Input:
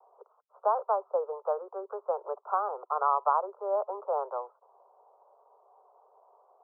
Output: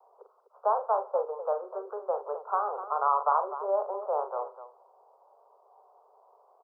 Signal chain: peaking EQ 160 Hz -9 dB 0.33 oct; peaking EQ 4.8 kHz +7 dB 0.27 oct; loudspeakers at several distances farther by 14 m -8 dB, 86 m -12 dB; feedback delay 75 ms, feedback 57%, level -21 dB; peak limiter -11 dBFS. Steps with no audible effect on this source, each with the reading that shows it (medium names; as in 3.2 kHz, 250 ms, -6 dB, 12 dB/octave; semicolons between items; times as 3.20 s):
peaking EQ 160 Hz: input has nothing below 360 Hz; peaking EQ 4.8 kHz: input has nothing above 1.5 kHz; peak limiter -11 dBFS: peak at its input -12.5 dBFS